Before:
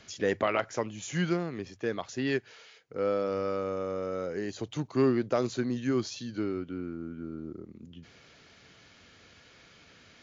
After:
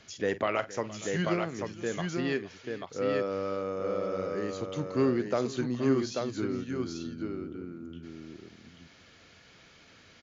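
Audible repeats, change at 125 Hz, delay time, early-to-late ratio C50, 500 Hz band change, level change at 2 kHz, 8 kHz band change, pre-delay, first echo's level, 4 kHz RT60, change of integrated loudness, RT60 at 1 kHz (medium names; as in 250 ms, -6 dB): 3, 0.0 dB, 48 ms, no reverb, 0.0 dB, 0.0 dB, no reading, no reverb, -15.5 dB, no reverb, 0.0 dB, no reverb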